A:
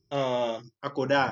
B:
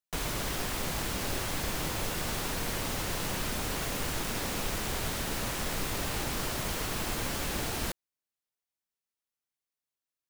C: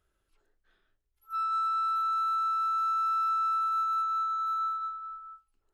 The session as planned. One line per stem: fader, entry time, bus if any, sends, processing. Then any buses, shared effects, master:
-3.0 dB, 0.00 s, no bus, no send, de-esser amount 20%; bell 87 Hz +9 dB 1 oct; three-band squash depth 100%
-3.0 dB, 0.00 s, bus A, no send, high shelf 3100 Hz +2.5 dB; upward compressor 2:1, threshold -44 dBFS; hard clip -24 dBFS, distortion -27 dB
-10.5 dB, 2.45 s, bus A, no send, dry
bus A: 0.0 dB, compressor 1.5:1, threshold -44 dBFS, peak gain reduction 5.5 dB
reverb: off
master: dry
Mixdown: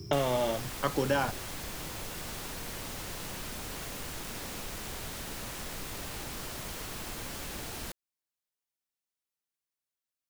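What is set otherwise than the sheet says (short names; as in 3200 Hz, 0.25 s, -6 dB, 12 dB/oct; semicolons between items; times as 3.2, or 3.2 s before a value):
stem B: missing upward compressor 2:1, threshold -44 dBFS; stem C: muted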